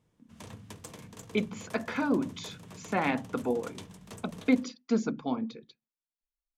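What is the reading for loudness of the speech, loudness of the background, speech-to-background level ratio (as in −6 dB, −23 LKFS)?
−31.5 LKFS, −48.0 LKFS, 16.5 dB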